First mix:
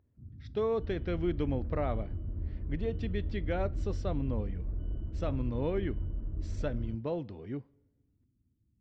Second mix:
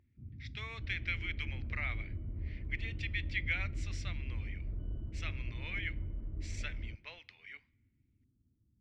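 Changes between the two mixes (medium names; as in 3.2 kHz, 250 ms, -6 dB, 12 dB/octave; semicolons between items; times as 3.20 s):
speech: add resonant high-pass 2.2 kHz, resonance Q 5.4; second sound -4.5 dB; master: remove distance through air 72 m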